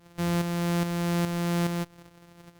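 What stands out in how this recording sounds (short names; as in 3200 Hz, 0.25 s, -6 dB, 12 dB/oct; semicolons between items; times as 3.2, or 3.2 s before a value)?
a buzz of ramps at a fixed pitch in blocks of 256 samples; tremolo saw up 2.4 Hz, depth 55%; Opus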